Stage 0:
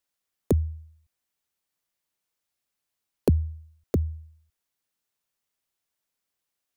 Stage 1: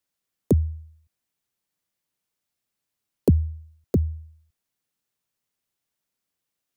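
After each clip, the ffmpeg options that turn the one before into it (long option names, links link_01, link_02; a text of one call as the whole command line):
ffmpeg -i in.wav -filter_complex "[0:a]acrossover=split=120|880|4100[link_01][link_02][link_03][link_04];[link_02]aemphasis=mode=reproduction:type=bsi[link_05];[link_03]alimiter=level_in=10dB:limit=-24dB:level=0:latency=1,volume=-10dB[link_06];[link_01][link_05][link_06][link_04]amix=inputs=4:normalize=0" out.wav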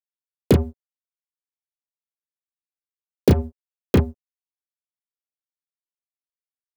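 ffmpeg -i in.wav -filter_complex "[0:a]acrusher=bits=3:mix=0:aa=0.5,acompressor=threshold=-20dB:ratio=3,asplit=2[link_01][link_02];[link_02]aecho=0:1:15|32:0.282|0.562[link_03];[link_01][link_03]amix=inputs=2:normalize=0,volume=7dB" out.wav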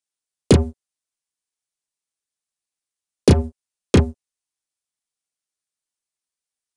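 ffmpeg -i in.wav -af "crystalizer=i=2:c=0,asoftclip=type=tanh:threshold=-4.5dB,aresample=22050,aresample=44100,volume=3.5dB" out.wav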